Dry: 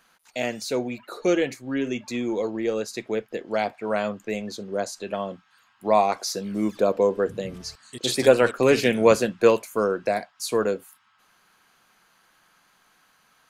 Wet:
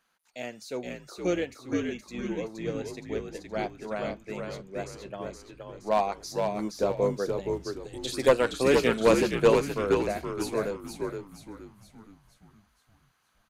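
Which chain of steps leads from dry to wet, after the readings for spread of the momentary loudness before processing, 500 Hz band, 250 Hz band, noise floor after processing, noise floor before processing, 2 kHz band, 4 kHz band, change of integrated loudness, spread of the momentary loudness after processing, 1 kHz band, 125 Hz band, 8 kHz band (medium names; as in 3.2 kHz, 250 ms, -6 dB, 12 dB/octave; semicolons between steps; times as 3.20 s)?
12 LU, -4.5 dB, -4.0 dB, -69 dBFS, -63 dBFS, -4.5 dB, -5.5 dB, -4.5 dB, 18 LU, -5.0 dB, -1.0 dB, -6.5 dB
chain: one-sided wavefolder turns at -8.5 dBFS; frequency-shifting echo 470 ms, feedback 47%, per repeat -71 Hz, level -3 dB; upward expansion 1.5:1, over -30 dBFS; trim -3 dB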